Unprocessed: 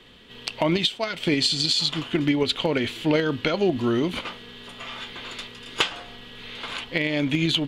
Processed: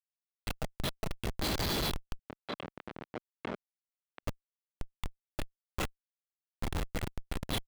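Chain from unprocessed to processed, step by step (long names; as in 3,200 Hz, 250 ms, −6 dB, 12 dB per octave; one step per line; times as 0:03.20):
loose part that buzzes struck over −24 dBFS, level −25 dBFS
downward compressor 8 to 1, threshold −26 dBFS, peak gain reduction 10 dB
spectral tilt +3 dB per octave
delay that swaps between a low-pass and a high-pass 256 ms, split 1,800 Hz, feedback 72%, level −10 dB
soft clipping −11 dBFS, distortion −22 dB
multi-voice chorus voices 6, 0.35 Hz, delay 27 ms, depth 2.9 ms
comb filter 1.5 ms, depth 100%
comparator with hysteresis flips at −22.5 dBFS
0:02.19–0:04.23: band-pass filter 220–2,400 Hz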